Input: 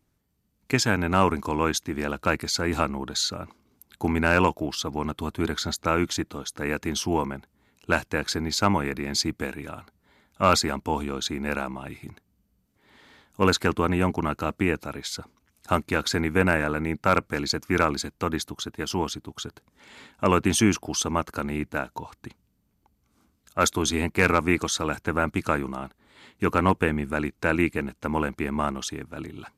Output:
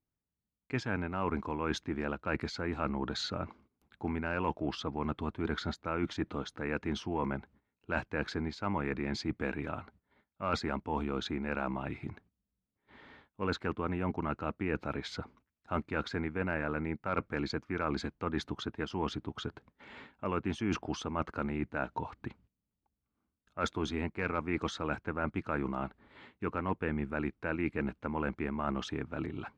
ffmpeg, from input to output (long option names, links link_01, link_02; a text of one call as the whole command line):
ffmpeg -i in.wav -af "agate=range=-18dB:threshold=-58dB:ratio=16:detection=peak,lowpass=2500,areverse,acompressor=threshold=-30dB:ratio=6,areverse" out.wav